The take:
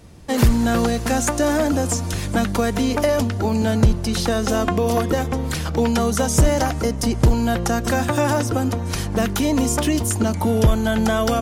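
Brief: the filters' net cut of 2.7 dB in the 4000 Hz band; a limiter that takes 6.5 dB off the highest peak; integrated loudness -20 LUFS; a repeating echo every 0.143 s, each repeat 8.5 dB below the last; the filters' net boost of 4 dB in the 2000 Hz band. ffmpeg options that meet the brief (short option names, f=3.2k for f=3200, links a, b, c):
-af "equalizer=f=2k:t=o:g=6.5,equalizer=f=4k:t=o:g=-6,alimiter=limit=-11.5dB:level=0:latency=1,aecho=1:1:143|286|429|572:0.376|0.143|0.0543|0.0206,volume=1dB"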